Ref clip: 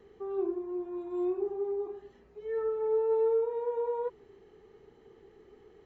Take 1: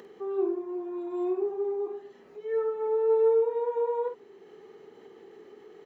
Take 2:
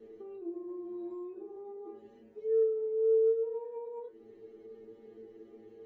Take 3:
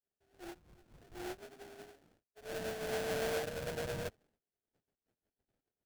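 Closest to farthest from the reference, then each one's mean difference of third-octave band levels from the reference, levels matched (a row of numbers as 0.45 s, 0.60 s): 1, 2, 3; 2.0 dB, 4.5 dB, 14.5 dB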